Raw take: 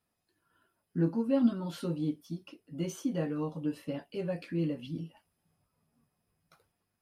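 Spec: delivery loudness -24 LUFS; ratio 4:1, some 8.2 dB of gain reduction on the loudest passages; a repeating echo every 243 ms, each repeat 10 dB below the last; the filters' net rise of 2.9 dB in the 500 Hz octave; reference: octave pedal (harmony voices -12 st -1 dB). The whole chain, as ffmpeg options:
-filter_complex "[0:a]equalizer=f=500:t=o:g=3.5,acompressor=threshold=0.0316:ratio=4,aecho=1:1:243|486|729|972:0.316|0.101|0.0324|0.0104,asplit=2[s0][s1];[s1]asetrate=22050,aresample=44100,atempo=2,volume=0.891[s2];[s0][s2]amix=inputs=2:normalize=0,volume=3.16"

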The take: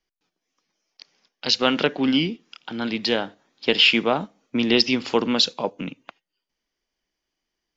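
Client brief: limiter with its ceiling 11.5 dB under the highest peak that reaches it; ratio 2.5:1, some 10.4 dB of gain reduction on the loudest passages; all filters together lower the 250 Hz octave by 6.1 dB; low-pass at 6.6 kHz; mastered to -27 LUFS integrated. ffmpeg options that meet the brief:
-af "lowpass=6600,equalizer=f=250:t=o:g=-7,acompressor=threshold=0.0398:ratio=2.5,volume=2.37,alimiter=limit=0.188:level=0:latency=1"

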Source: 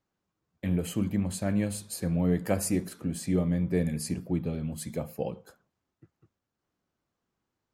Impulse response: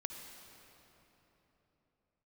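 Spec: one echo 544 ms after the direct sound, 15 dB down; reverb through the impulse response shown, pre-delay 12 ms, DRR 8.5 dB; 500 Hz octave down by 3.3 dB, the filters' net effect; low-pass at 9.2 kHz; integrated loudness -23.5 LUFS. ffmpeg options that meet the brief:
-filter_complex "[0:a]lowpass=9200,equalizer=f=500:t=o:g=-4,aecho=1:1:544:0.178,asplit=2[s0][s1];[1:a]atrim=start_sample=2205,adelay=12[s2];[s1][s2]afir=irnorm=-1:irlink=0,volume=0.447[s3];[s0][s3]amix=inputs=2:normalize=0,volume=2.11"

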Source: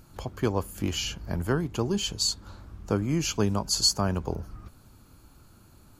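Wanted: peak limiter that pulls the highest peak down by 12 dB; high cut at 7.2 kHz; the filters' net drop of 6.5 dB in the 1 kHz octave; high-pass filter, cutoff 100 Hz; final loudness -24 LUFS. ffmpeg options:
-af "highpass=100,lowpass=7200,equalizer=f=1000:t=o:g=-8.5,volume=3.16,alimiter=limit=0.2:level=0:latency=1"

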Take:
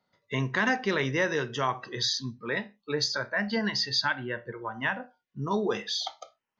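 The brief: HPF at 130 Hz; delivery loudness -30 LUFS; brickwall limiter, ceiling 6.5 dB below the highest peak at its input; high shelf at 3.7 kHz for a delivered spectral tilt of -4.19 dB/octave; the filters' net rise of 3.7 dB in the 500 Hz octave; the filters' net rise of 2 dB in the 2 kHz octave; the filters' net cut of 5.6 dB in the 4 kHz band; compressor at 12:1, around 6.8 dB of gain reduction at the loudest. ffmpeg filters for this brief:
-af "highpass=130,equalizer=f=500:t=o:g=4.5,equalizer=f=2000:t=o:g=4,highshelf=f=3700:g=-4.5,equalizer=f=4000:t=o:g=-4.5,acompressor=threshold=0.0562:ratio=12,volume=1.41,alimiter=limit=0.126:level=0:latency=1"

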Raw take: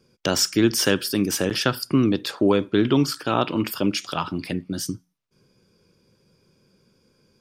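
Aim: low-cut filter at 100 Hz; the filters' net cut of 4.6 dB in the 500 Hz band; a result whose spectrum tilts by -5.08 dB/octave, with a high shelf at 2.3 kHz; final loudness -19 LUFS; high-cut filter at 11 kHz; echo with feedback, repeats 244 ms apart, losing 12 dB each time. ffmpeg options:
-af "highpass=100,lowpass=11000,equalizer=f=500:t=o:g=-6,highshelf=f=2300:g=-7,aecho=1:1:244|488|732:0.251|0.0628|0.0157,volume=2.11"

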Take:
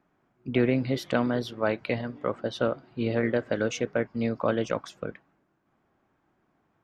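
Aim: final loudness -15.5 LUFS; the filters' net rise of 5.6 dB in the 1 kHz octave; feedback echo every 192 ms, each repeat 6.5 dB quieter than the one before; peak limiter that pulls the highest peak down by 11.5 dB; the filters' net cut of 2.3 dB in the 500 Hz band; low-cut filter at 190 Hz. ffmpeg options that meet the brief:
-af "highpass=190,equalizer=f=500:t=o:g=-5,equalizer=f=1000:t=o:g=9,alimiter=limit=0.1:level=0:latency=1,aecho=1:1:192|384|576|768|960|1152:0.473|0.222|0.105|0.0491|0.0231|0.0109,volume=7.08"

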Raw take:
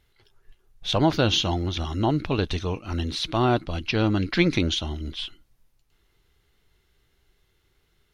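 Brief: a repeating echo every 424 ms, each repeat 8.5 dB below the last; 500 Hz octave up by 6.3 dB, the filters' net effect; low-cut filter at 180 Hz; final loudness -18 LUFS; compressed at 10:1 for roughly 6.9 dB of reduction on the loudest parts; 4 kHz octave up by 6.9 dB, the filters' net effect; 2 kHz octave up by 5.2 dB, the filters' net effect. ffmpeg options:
-af "highpass=180,equalizer=f=500:t=o:g=8.5,equalizer=f=2000:t=o:g=4,equalizer=f=4000:t=o:g=7,acompressor=threshold=0.126:ratio=10,aecho=1:1:424|848|1272|1696:0.376|0.143|0.0543|0.0206,volume=2"

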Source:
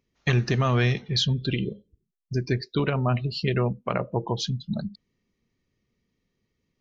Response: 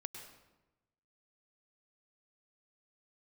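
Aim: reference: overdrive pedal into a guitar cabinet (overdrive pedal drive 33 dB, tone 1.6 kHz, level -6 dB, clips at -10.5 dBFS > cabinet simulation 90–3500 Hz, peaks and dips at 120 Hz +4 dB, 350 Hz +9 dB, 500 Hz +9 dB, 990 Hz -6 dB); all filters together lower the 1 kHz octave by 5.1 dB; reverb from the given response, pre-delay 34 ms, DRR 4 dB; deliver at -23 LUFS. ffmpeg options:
-filter_complex "[0:a]equalizer=f=1000:t=o:g=-5,asplit=2[s0][s1];[1:a]atrim=start_sample=2205,adelay=34[s2];[s1][s2]afir=irnorm=-1:irlink=0,volume=0.891[s3];[s0][s3]amix=inputs=2:normalize=0,asplit=2[s4][s5];[s5]highpass=f=720:p=1,volume=44.7,asoftclip=type=tanh:threshold=0.299[s6];[s4][s6]amix=inputs=2:normalize=0,lowpass=f=1600:p=1,volume=0.501,highpass=90,equalizer=f=120:t=q:w=4:g=4,equalizer=f=350:t=q:w=4:g=9,equalizer=f=500:t=q:w=4:g=9,equalizer=f=990:t=q:w=4:g=-6,lowpass=f=3500:w=0.5412,lowpass=f=3500:w=1.3066,volume=0.447"

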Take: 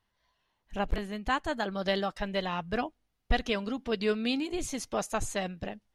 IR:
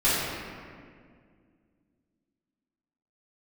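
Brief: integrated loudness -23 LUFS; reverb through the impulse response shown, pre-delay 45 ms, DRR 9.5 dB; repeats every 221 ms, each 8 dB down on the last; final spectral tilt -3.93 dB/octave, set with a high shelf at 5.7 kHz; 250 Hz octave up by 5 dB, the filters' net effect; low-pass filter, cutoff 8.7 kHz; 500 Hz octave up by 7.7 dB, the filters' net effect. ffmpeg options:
-filter_complex "[0:a]lowpass=8700,equalizer=f=250:t=o:g=4,equalizer=f=500:t=o:g=8.5,highshelf=f=5700:g=7.5,aecho=1:1:221|442|663|884|1105:0.398|0.159|0.0637|0.0255|0.0102,asplit=2[s0][s1];[1:a]atrim=start_sample=2205,adelay=45[s2];[s1][s2]afir=irnorm=-1:irlink=0,volume=0.0531[s3];[s0][s3]amix=inputs=2:normalize=0,volume=1.41"

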